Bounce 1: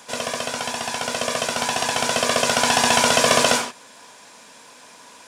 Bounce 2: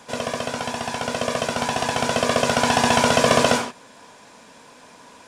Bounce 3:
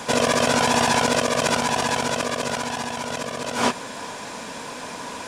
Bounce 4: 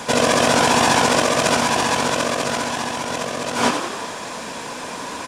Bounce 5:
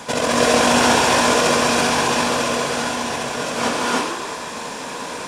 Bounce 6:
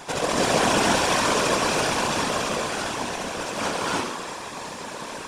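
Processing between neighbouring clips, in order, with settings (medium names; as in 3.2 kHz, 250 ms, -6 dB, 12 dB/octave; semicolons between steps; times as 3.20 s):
tilt EQ -2 dB/octave
compressor with a negative ratio -30 dBFS, ratio -1; trim +6 dB
frequency-shifting echo 89 ms, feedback 60%, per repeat +52 Hz, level -7 dB; trim +2.5 dB
gated-style reverb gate 350 ms rising, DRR -3.5 dB; trim -4 dB
whisper effect; trim -5.5 dB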